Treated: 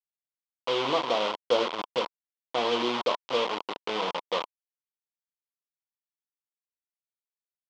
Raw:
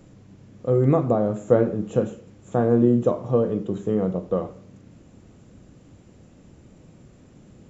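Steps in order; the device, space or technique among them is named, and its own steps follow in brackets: hand-held game console (bit-crush 4-bit; speaker cabinet 480–4900 Hz, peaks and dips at 1000 Hz +10 dB, 1700 Hz -7 dB, 3200 Hz +8 dB); gain -4.5 dB

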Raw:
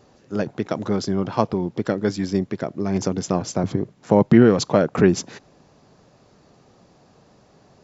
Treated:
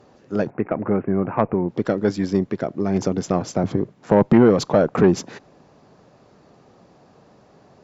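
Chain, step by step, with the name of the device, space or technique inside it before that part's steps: 0.5–1.69 steep low-pass 2600 Hz 96 dB/oct; tube preamp driven hard (tube stage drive 9 dB, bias 0.3; low shelf 130 Hz -6.5 dB; high shelf 3100 Hz -9 dB); gain +4.5 dB

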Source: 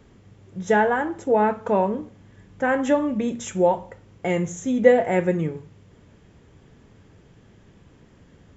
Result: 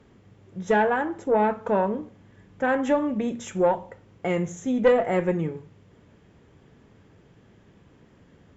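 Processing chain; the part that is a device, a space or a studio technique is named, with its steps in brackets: tube preamp driven hard (tube stage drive 10 dB, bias 0.35; low shelf 82 Hz -7.5 dB; high shelf 5100 Hz -7.5 dB)

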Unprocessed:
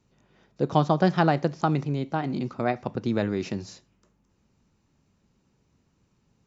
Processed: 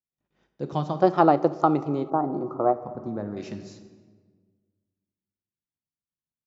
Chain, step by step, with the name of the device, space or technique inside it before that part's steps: gate -60 dBFS, range -30 dB; 1.03–2.73 spectral gain 270–1400 Hz +12 dB; compressed reverb return (on a send at -7 dB: reverb RT60 1.5 s, pre-delay 3 ms + compressor, threshold -19 dBFS, peak gain reduction 12 dB); 2.1–3.37 on the sum: EQ curve 1100 Hz 0 dB, 1700 Hz -8 dB, 2800 Hz -24 dB, 5900 Hz -13 dB; gain -7 dB

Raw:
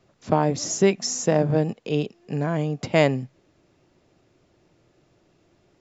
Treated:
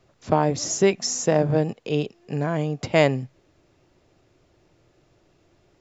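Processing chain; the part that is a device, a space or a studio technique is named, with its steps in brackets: low shelf boost with a cut just above (low shelf 78 Hz +6 dB; bell 200 Hz -4.5 dB 0.96 oct); gain +1 dB

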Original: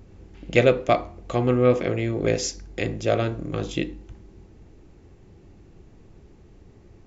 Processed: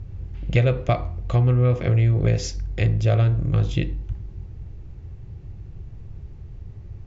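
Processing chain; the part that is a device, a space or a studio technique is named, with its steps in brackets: jukebox (LPF 5600 Hz 12 dB/oct; resonant low shelf 170 Hz +12.5 dB, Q 1.5; compressor 4:1, threshold -15 dBFS, peak gain reduction 7 dB)

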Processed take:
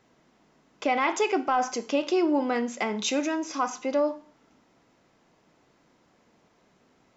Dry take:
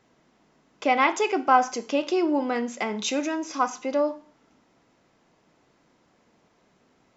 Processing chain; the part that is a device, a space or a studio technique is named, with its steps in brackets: soft clipper into limiter (soft clip -6 dBFS, distortion -25 dB; limiter -15 dBFS, peak gain reduction 7.5 dB)

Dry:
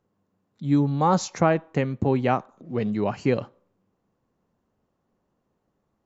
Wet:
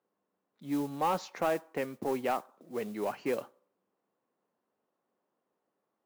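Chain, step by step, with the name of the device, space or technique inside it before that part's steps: carbon microphone (BPF 350–3400 Hz; soft clip -16.5 dBFS, distortion -14 dB; modulation noise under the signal 21 dB); gain -5 dB

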